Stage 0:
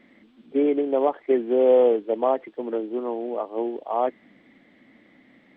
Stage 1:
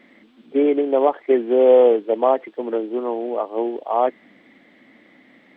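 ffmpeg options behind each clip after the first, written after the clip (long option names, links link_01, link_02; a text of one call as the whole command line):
ffmpeg -i in.wav -af "lowshelf=frequency=150:gain=-11.5,volume=5.5dB" out.wav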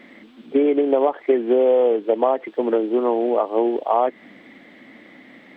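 ffmpeg -i in.wav -af "acompressor=threshold=-20dB:ratio=6,volume=6dB" out.wav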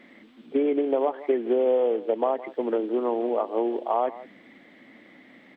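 ffmpeg -i in.wav -af "aecho=1:1:164:0.141,volume=-6dB" out.wav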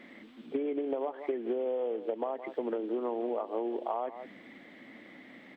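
ffmpeg -i in.wav -af "acompressor=threshold=-30dB:ratio=6" out.wav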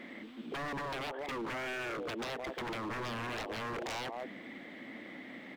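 ffmpeg -i in.wav -af "aeval=exprs='0.0133*(abs(mod(val(0)/0.0133+3,4)-2)-1)':channel_layout=same,volume=4dB" out.wav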